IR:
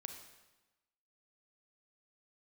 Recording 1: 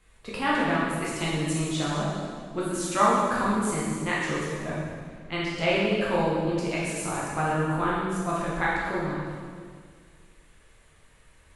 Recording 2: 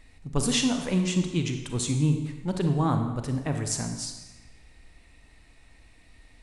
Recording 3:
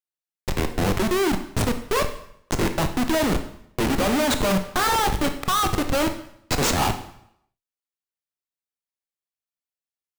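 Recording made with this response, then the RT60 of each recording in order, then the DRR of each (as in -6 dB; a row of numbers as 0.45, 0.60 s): 2; 1.9, 1.1, 0.70 s; -7.0, 5.0, 7.0 dB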